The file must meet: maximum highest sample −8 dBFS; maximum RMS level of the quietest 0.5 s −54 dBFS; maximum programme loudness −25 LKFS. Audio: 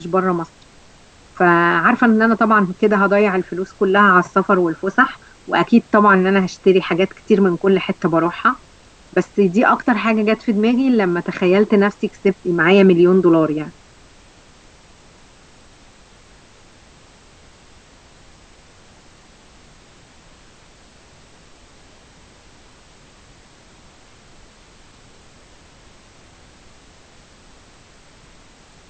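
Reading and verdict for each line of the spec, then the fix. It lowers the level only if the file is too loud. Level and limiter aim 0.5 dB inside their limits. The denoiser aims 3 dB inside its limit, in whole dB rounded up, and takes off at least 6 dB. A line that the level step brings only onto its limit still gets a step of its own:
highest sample −1.5 dBFS: out of spec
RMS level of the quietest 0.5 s −47 dBFS: out of spec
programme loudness −15.5 LKFS: out of spec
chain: level −10 dB

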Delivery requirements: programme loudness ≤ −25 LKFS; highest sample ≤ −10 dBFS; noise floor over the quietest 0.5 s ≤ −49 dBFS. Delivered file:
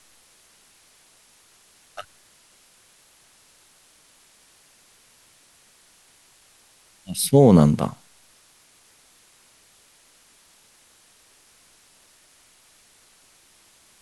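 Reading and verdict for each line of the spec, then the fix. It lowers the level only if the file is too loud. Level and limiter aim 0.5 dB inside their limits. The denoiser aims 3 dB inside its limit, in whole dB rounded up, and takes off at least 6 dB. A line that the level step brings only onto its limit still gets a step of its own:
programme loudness −17.5 LKFS: out of spec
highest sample −3.0 dBFS: out of spec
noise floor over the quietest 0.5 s −57 dBFS: in spec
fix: level −8 dB

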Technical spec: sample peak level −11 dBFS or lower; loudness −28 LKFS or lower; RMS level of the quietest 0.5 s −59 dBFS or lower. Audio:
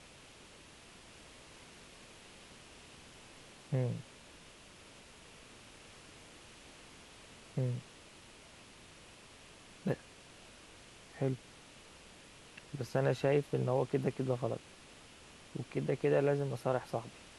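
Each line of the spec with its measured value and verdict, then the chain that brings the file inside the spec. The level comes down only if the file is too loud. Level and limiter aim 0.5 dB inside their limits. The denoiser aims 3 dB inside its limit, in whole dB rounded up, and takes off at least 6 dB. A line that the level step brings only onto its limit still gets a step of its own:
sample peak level −18.0 dBFS: in spec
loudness −36.0 LKFS: in spec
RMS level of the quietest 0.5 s −57 dBFS: out of spec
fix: broadband denoise 6 dB, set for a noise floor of −57 dBFS

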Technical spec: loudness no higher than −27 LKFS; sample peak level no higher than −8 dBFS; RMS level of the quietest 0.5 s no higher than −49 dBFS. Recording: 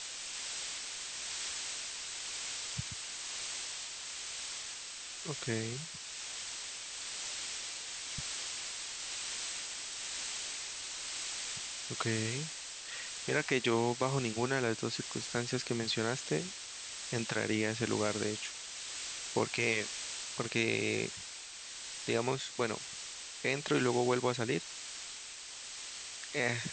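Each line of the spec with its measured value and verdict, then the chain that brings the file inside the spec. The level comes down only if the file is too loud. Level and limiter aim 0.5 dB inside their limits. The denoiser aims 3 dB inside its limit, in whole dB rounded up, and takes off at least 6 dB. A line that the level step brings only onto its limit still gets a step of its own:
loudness −36.0 LKFS: in spec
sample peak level −16.0 dBFS: in spec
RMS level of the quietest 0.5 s −47 dBFS: out of spec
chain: broadband denoise 6 dB, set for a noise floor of −47 dBFS

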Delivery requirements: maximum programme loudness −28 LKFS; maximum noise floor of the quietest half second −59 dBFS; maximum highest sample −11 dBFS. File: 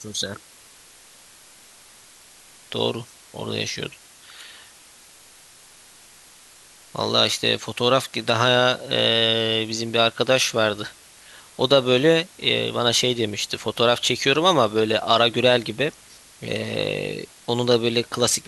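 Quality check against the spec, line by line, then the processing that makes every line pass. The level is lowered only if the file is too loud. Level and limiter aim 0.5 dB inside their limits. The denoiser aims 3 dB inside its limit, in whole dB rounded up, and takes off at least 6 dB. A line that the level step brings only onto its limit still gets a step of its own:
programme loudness −20.5 LKFS: out of spec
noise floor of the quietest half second −49 dBFS: out of spec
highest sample −4.0 dBFS: out of spec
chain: broadband denoise 6 dB, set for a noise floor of −49 dBFS
level −8 dB

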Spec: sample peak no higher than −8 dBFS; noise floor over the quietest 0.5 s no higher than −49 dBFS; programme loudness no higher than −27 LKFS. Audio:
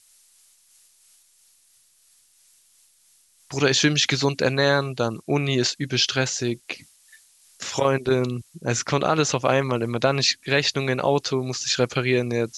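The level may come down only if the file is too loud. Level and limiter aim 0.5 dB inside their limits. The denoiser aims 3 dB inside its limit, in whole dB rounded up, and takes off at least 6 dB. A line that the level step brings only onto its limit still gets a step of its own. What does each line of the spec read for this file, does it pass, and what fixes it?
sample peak −3.5 dBFS: out of spec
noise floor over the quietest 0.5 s −60 dBFS: in spec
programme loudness −22.5 LKFS: out of spec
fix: level −5 dB

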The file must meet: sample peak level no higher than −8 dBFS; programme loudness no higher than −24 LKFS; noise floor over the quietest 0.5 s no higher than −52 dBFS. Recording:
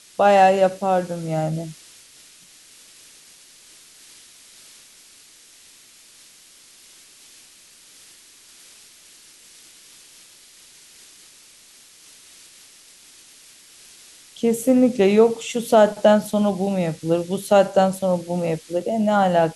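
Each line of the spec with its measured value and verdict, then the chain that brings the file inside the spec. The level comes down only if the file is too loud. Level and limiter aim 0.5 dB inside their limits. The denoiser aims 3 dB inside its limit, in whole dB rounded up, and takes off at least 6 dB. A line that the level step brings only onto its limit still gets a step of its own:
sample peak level −4.0 dBFS: out of spec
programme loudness −19.0 LKFS: out of spec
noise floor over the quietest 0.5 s −49 dBFS: out of spec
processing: level −5.5 dB

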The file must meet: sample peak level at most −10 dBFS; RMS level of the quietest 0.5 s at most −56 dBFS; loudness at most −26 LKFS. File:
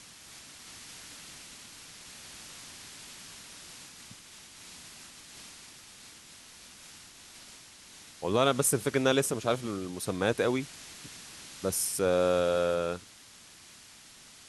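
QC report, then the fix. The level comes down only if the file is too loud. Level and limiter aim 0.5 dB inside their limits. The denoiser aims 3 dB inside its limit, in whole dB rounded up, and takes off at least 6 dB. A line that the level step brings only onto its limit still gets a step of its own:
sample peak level −11.5 dBFS: in spec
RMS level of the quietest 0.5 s −53 dBFS: out of spec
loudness −28.5 LKFS: in spec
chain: broadband denoise 6 dB, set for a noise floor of −53 dBFS

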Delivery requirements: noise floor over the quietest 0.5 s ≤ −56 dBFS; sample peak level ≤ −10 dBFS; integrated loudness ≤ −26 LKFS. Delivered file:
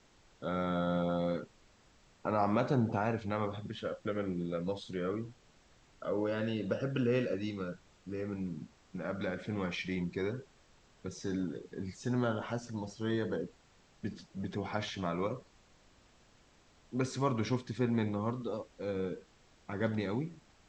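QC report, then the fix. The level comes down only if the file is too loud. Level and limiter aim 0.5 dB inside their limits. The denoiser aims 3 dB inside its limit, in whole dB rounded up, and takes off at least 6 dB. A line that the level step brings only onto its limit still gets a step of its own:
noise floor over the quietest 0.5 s −64 dBFS: in spec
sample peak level −16.5 dBFS: in spec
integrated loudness −36.0 LKFS: in spec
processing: no processing needed

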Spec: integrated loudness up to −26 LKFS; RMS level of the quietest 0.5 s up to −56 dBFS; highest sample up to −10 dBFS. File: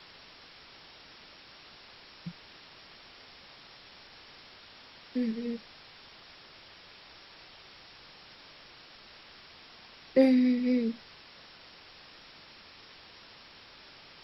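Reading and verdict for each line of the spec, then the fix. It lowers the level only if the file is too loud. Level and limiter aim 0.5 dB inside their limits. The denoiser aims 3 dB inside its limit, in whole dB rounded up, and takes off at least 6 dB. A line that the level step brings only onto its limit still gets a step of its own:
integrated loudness −29.0 LKFS: in spec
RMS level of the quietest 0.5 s −53 dBFS: out of spec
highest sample −12.0 dBFS: in spec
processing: broadband denoise 6 dB, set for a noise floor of −53 dBFS

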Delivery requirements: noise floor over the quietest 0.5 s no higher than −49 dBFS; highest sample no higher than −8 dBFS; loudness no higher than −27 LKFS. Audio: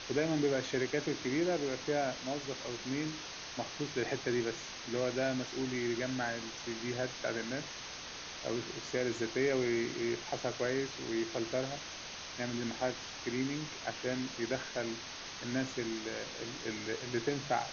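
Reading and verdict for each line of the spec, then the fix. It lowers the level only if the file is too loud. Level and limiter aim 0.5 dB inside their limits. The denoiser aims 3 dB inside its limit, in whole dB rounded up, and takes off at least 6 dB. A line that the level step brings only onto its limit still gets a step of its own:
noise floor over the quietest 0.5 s −45 dBFS: out of spec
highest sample −19.5 dBFS: in spec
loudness −36.0 LKFS: in spec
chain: broadband denoise 7 dB, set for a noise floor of −45 dBFS

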